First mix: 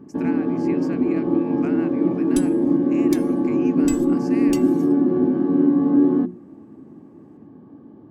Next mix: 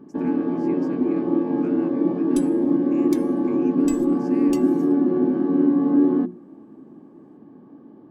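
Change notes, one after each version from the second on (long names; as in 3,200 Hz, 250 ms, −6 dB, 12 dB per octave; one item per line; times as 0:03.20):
speech −9.0 dB
second sound −5.0 dB
master: add parametric band 90 Hz −12 dB 1.2 octaves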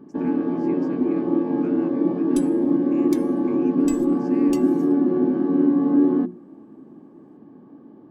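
speech: add high-shelf EQ 9,800 Hz −12 dB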